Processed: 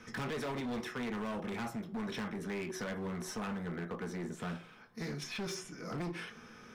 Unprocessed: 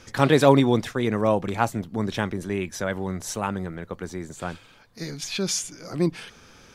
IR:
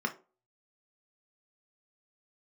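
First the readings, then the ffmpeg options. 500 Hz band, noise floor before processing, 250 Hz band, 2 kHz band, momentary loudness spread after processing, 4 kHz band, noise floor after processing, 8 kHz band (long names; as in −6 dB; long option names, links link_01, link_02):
−17.0 dB, −52 dBFS, −13.5 dB, −10.5 dB, 5 LU, −13.0 dB, −55 dBFS, −16.0 dB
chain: -filter_complex "[1:a]atrim=start_sample=2205[link_01];[0:a][link_01]afir=irnorm=-1:irlink=0,acrossover=split=480|1900[link_02][link_03][link_04];[link_02]acompressor=threshold=-27dB:ratio=4[link_05];[link_03]acompressor=threshold=-32dB:ratio=4[link_06];[link_04]acompressor=threshold=-34dB:ratio=4[link_07];[link_05][link_06][link_07]amix=inputs=3:normalize=0,volume=26.5dB,asoftclip=hard,volume=-26.5dB,volume=-8.5dB"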